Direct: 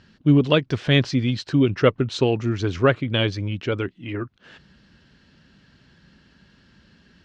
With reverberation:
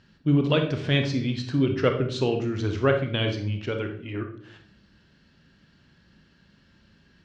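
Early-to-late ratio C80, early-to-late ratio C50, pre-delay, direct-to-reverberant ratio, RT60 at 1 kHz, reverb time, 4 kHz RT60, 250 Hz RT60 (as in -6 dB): 11.5 dB, 7.5 dB, 29 ms, 4.5 dB, 0.50 s, 0.60 s, 0.45 s, 0.85 s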